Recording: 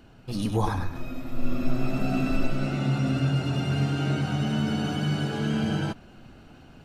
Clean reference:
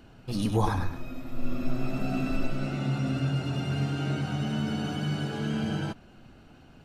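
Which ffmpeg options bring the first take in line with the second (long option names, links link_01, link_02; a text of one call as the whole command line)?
ffmpeg -i in.wav -af "asetnsamples=nb_out_samples=441:pad=0,asendcmd='0.95 volume volume -3.5dB',volume=0dB" out.wav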